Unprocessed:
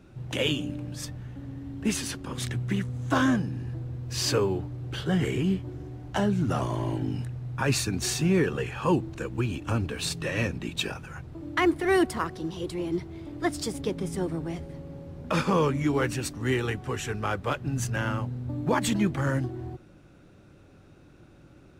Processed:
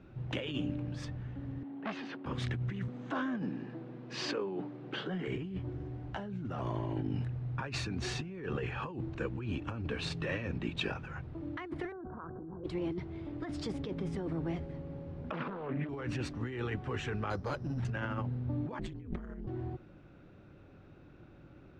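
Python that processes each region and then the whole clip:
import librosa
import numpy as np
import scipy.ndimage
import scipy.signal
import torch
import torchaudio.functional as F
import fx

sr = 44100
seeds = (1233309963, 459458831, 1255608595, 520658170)

y = fx.chain(x, sr, fx.highpass(hz=210.0, slope=24),
    fx.air_absorb(metres=220.0),
    fx.transformer_sat(knee_hz=1900.0), at=(1.63, 2.26))
y = fx.chain(y, sr, fx.steep_highpass(hz=170.0, slope=36),
    fx.over_compress(threshold_db=-28.0, ratio=-1.0),
    fx.air_absorb(metres=54.0), at=(2.88, 5.28))
y = fx.chain(y, sr, fx.cheby1_lowpass(hz=1600.0, order=8),
    fx.env_flatten(amount_pct=100), at=(11.92, 12.64))
y = fx.chain(y, sr, fx.highpass(hz=150.0, slope=24),
    fx.air_absorb(metres=320.0),
    fx.doppler_dist(depth_ms=0.51), at=(15.31, 15.89))
y = fx.chain(y, sr, fx.lowpass(hz=1200.0, slope=6),
    fx.resample_bad(factor=8, down='none', up='hold'),
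    fx.clip_hard(threshold_db=-24.5), at=(17.3, 17.85))
y = fx.chain(y, sr, fx.ring_mod(carrier_hz=85.0),
    fx.low_shelf(hz=350.0, db=11.0), at=(18.79, 19.47))
y = scipy.signal.sosfilt(scipy.signal.butter(2, 3100.0, 'lowpass', fs=sr, output='sos'), y)
y = fx.over_compress(y, sr, threshold_db=-31.0, ratio=-1.0)
y = F.gain(torch.from_numpy(y), -6.0).numpy()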